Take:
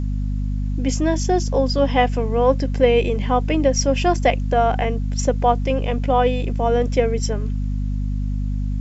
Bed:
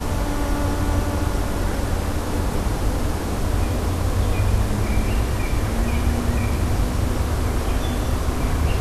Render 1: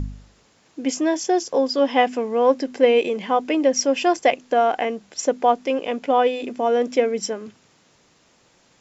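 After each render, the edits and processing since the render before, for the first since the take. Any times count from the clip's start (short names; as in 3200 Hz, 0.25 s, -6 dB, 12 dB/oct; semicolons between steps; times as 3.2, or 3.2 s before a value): de-hum 50 Hz, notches 5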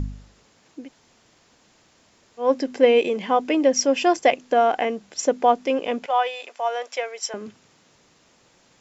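0.81–2.45 room tone, crossfade 0.16 s; 6.06–7.34 HPF 660 Hz 24 dB/oct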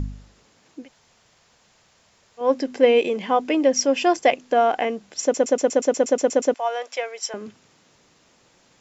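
0.82–2.41 bell 290 Hz -10 dB; 5.22 stutter in place 0.12 s, 11 plays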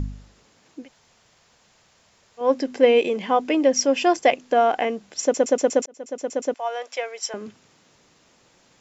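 5.86–7.45 fade in equal-power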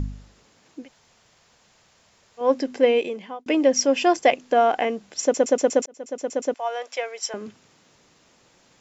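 2.41–3.46 fade out equal-power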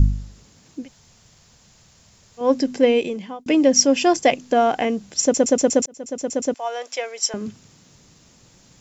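tone controls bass +14 dB, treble +9 dB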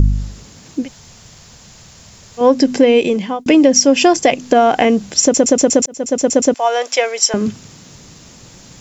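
compressor 4:1, threshold -19 dBFS, peak gain reduction 8 dB; maximiser +12 dB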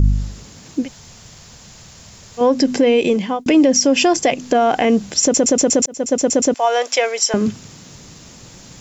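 limiter -5.5 dBFS, peak gain reduction 4.5 dB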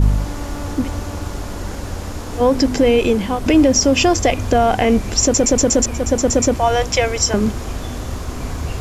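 add bed -4 dB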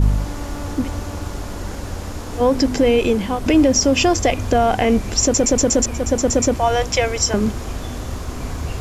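gain -1.5 dB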